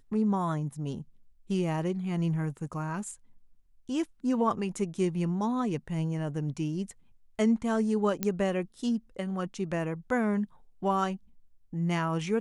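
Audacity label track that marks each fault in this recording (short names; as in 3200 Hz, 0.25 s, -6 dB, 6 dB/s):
8.230000	8.230000	pop -13 dBFS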